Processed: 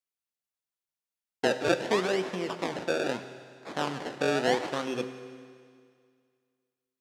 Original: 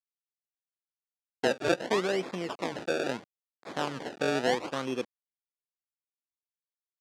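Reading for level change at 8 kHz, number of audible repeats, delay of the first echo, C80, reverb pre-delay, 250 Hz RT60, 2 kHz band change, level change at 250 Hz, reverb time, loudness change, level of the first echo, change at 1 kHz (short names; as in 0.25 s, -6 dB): +1.5 dB, none, none, 11.5 dB, 8 ms, 2.1 s, +1.5 dB, +1.5 dB, 2.1 s, +1.5 dB, none, +1.5 dB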